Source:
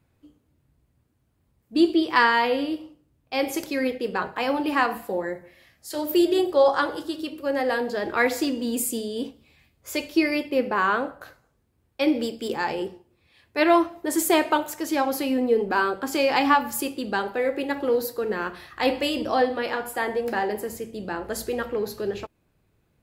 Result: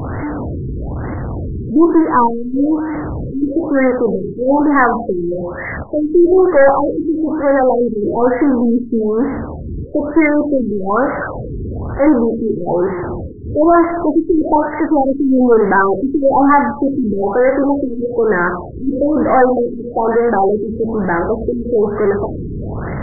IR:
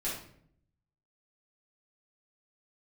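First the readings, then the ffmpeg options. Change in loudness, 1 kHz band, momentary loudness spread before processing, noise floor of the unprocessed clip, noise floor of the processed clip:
+9.5 dB, +9.0 dB, 12 LU, −69 dBFS, −26 dBFS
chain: -filter_complex "[0:a]aeval=exprs='val(0)+0.5*0.0473*sgn(val(0))':channel_layout=same,asplit=2[link_01][link_02];[link_02]equalizer=frequency=3100:width_type=o:width=0.63:gain=6.5[link_03];[1:a]atrim=start_sample=2205,asetrate=34398,aresample=44100[link_04];[link_03][link_04]afir=irnorm=-1:irlink=0,volume=-25dB[link_05];[link_01][link_05]amix=inputs=2:normalize=0,aeval=exprs='0.631*(cos(1*acos(clip(val(0)/0.631,-1,1)))-cos(1*PI/2))+0.0562*(cos(4*acos(clip(val(0)/0.631,-1,1)))-cos(4*PI/2))+0.251*(cos(5*acos(clip(val(0)/0.631,-1,1)))-cos(5*PI/2))+0.0282*(cos(8*acos(clip(val(0)/0.631,-1,1)))-cos(8*PI/2))':channel_layout=same,afftfilt=real='re*lt(b*sr/1024,430*pow(2200/430,0.5+0.5*sin(2*PI*1.1*pts/sr)))':imag='im*lt(b*sr/1024,430*pow(2200/430,0.5+0.5*sin(2*PI*1.1*pts/sr)))':win_size=1024:overlap=0.75,volume=1.5dB"

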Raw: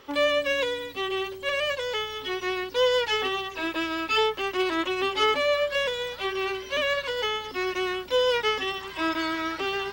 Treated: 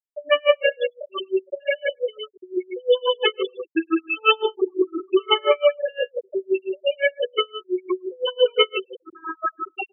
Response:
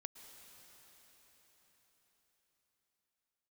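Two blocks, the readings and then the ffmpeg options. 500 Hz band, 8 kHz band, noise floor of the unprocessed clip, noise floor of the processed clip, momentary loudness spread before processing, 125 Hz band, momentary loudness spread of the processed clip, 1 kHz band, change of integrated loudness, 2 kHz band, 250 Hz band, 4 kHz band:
+5.0 dB, below −35 dB, −40 dBFS, −67 dBFS, 6 LU, below −20 dB, 11 LU, +0.5 dB, +3.5 dB, 0.0 dB, +4.5 dB, +2.0 dB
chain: -filter_complex "[0:a]asplit=2[link_01][link_02];[link_02]highshelf=frequency=3000:gain=2[link_03];[1:a]atrim=start_sample=2205,adelay=144[link_04];[link_03][link_04]afir=irnorm=-1:irlink=0,volume=9.5dB[link_05];[link_01][link_05]amix=inputs=2:normalize=0,afftfilt=real='re*gte(hypot(re,im),0.447)':imag='im*gte(hypot(re,im),0.447)':win_size=1024:overlap=0.75,highpass=85,aecho=1:1:105:0.316,aeval=exprs='val(0)*pow(10,-35*(0.5-0.5*cos(2*PI*5.8*n/s))/20)':channel_layout=same,volume=7dB"

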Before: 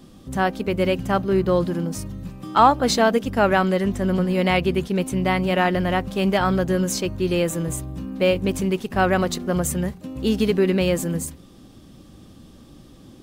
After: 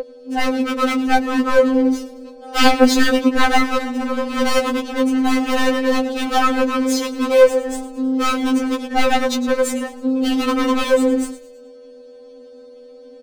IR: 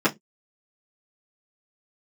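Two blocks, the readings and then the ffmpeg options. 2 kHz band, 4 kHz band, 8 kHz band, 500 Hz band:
+4.5 dB, +6.0 dB, +2.0 dB, +3.5 dB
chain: -filter_complex "[0:a]highpass=220,agate=range=-8dB:threshold=-37dB:ratio=16:detection=peak,adynamicequalizer=threshold=0.0224:dfrequency=360:dqfactor=0.94:tfrequency=360:tqfactor=0.94:attack=5:release=100:ratio=0.375:range=3:mode=boostabove:tftype=bell,aeval=exprs='val(0)+0.1*sin(2*PI*490*n/s)':channel_layout=same,adynamicsmooth=sensitivity=7.5:basefreq=1100,aeval=exprs='0.224*(abs(mod(val(0)/0.224+3,4)-2)-1)':channel_layout=same,asplit=2[link_01][link_02];[link_02]asplit=4[link_03][link_04][link_05][link_06];[link_03]adelay=108,afreqshift=-150,volume=-14.5dB[link_07];[link_04]adelay=216,afreqshift=-300,volume=-22dB[link_08];[link_05]adelay=324,afreqshift=-450,volume=-29.6dB[link_09];[link_06]adelay=432,afreqshift=-600,volume=-37.1dB[link_10];[link_07][link_08][link_09][link_10]amix=inputs=4:normalize=0[link_11];[link_01][link_11]amix=inputs=2:normalize=0,afftfilt=real='re*3.46*eq(mod(b,12),0)':imag='im*3.46*eq(mod(b,12),0)':win_size=2048:overlap=0.75,volume=6.5dB"

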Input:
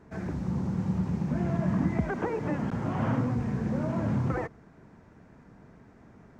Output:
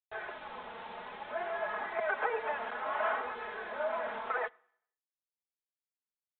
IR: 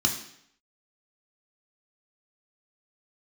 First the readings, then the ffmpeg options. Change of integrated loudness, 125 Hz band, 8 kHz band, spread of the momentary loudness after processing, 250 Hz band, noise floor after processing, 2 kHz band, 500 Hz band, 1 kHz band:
−6.5 dB, below −35 dB, can't be measured, 12 LU, −27.5 dB, below −85 dBFS, +6.0 dB, −1.0 dB, +2.5 dB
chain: -filter_complex "[0:a]highpass=frequency=580:width=0.5412,highpass=frequency=580:width=1.3066,aecho=1:1:4.7:0.68,adynamicequalizer=threshold=0.00316:dfrequency=1500:dqfactor=1.7:tfrequency=1500:tqfactor=1.7:attack=5:release=100:ratio=0.375:range=2:mode=boostabove:tftype=bell,acrusher=bits=7:mix=0:aa=0.000001,flanger=delay=2.3:depth=2.1:regen=50:speed=0.59:shape=sinusoidal,asplit=2[link_01][link_02];[1:a]atrim=start_sample=2205[link_03];[link_02][link_03]afir=irnorm=-1:irlink=0,volume=-28.5dB[link_04];[link_01][link_04]amix=inputs=2:normalize=0,aresample=8000,aresample=44100,volume=5.5dB"

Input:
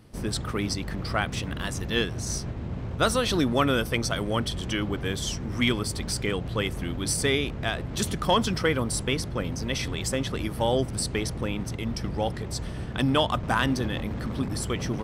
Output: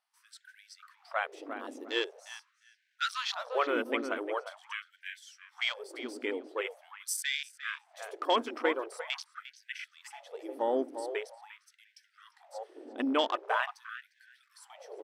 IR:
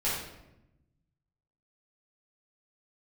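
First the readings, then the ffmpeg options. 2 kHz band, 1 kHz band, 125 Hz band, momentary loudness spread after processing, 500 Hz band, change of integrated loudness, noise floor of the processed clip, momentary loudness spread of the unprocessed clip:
−5.5 dB, −5.0 dB, below −40 dB, 18 LU, −6.5 dB, −7.0 dB, −73 dBFS, 7 LU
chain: -filter_complex "[0:a]afwtdn=0.0251,asplit=2[link_01][link_02];[link_02]adelay=352,lowpass=frequency=1700:poles=1,volume=-8dB,asplit=2[link_03][link_04];[link_04]adelay=352,lowpass=frequency=1700:poles=1,volume=0.26,asplit=2[link_05][link_06];[link_06]adelay=352,lowpass=frequency=1700:poles=1,volume=0.26[link_07];[link_01][link_03][link_05][link_07]amix=inputs=4:normalize=0,afftfilt=real='re*gte(b*sr/1024,220*pow(1500/220,0.5+0.5*sin(2*PI*0.44*pts/sr)))':imag='im*gte(b*sr/1024,220*pow(1500/220,0.5+0.5*sin(2*PI*0.44*pts/sr)))':win_size=1024:overlap=0.75,volume=-4.5dB"

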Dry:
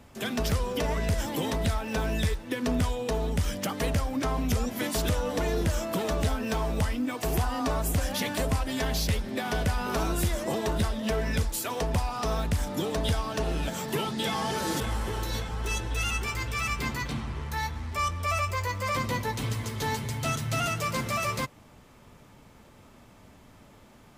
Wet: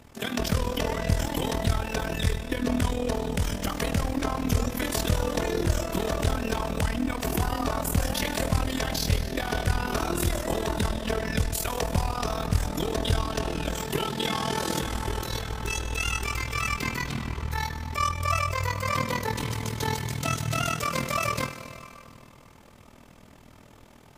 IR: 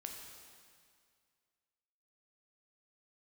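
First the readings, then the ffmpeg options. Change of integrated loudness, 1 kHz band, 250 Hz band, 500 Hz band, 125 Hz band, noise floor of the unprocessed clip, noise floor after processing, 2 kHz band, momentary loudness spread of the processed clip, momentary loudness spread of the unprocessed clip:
+1.5 dB, +1.5 dB, +1.0 dB, +1.0 dB, +1.5 dB, −54 dBFS, −52 dBFS, +1.5 dB, 4 LU, 3 LU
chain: -filter_complex "[0:a]bandreject=frequency=53.87:width_type=h:width=4,bandreject=frequency=107.74:width_type=h:width=4,bandreject=frequency=161.61:width_type=h:width=4,bandreject=frequency=215.48:width_type=h:width=4,bandreject=frequency=269.35:width_type=h:width=4,bandreject=frequency=323.22:width_type=h:width=4,bandreject=frequency=377.09:width_type=h:width=4,bandreject=frequency=430.96:width_type=h:width=4,bandreject=frequency=484.83:width_type=h:width=4,bandreject=frequency=538.7:width_type=h:width=4,bandreject=frequency=592.57:width_type=h:width=4,bandreject=frequency=646.44:width_type=h:width=4,bandreject=frequency=700.31:width_type=h:width=4,bandreject=frequency=754.18:width_type=h:width=4,bandreject=frequency=808.05:width_type=h:width=4,bandreject=frequency=861.92:width_type=h:width=4,bandreject=frequency=915.79:width_type=h:width=4,bandreject=frequency=969.66:width_type=h:width=4,bandreject=frequency=1023.53:width_type=h:width=4,bandreject=frequency=1077.4:width_type=h:width=4,bandreject=frequency=1131.27:width_type=h:width=4,bandreject=frequency=1185.14:width_type=h:width=4,bandreject=frequency=1239.01:width_type=h:width=4,bandreject=frequency=1292.88:width_type=h:width=4,bandreject=frequency=1346.75:width_type=h:width=4,bandreject=frequency=1400.62:width_type=h:width=4,bandreject=frequency=1454.49:width_type=h:width=4,bandreject=frequency=1508.36:width_type=h:width=4,bandreject=frequency=1562.23:width_type=h:width=4,bandreject=frequency=1616.1:width_type=h:width=4,bandreject=frequency=1669.97:width_type=h:width=4,bandreject=frequency=1723.84:width_type=h:width=4,bandreject=frequency=1777.71:width_type=h:width=4,bandreject=frequency=1831.58:width_type=h:width=4,bandreject=frequency=1885.45:width_type=h:width=4,bandreject=frequency=1939.32:width_type=h:width=4,bandreject=frequency=1993.19:width_type=h:width=4,bandreject=frequency=2047.06:width_type=h:width=4,asplit=2[link_01][link_02];[1:a]atrim=start_sample=2205,asetrate=37044,aresample=44100[link_03];[link_02][link_03]afir=irnorm=-1:irlink=0,volume=2dB[link_04];[link_01][link_04]amix=inputs=2:normalize=0,tremolo=f=40:d=0.788"

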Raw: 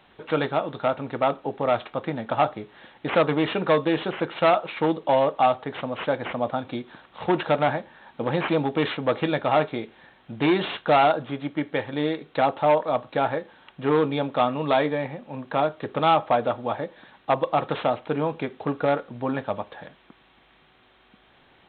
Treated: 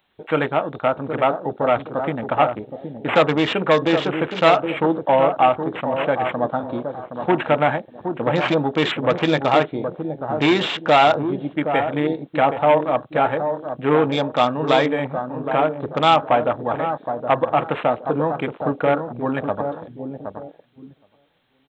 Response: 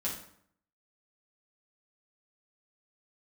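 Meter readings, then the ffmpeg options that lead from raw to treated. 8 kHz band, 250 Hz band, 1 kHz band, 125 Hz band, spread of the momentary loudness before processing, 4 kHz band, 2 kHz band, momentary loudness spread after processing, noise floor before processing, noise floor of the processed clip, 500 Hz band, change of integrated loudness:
can't be measured, +4.5 dB, +4.5 dB, +4.5 dB, 11 LU, +6.5 dB, +6.0 dB, 10 LU, −58 dBFS, −58 dBFS, +4.5 dB, +4.5 dB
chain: -filter_complex "[0:a]aemphasis=mode=production:type=75kf,asplit=2[link_01][link_02];[link_02]adelay=769,lowpass=frequency=1000:poles=1,volume=-6.5dB,asplit=2[link_03][link_04];[link_04]adelay=769,lowpass=frequency=1000:poles=1,volume=0.36,asplit=2[link_05][link_06];[link_06]adelay=769,lowpass=frequency=1000:poles=1,volume=0.36,asplit=2[link_07][link_08];[link_08]adelay=769,lowpass=frequency=1000:poles=1,volume=0.36[link_09];[link_01][link_03][link_05][link_07][link_09]amix=inputs=5:normalize=0,afwtdn=0.0224,volume=3.5dB"

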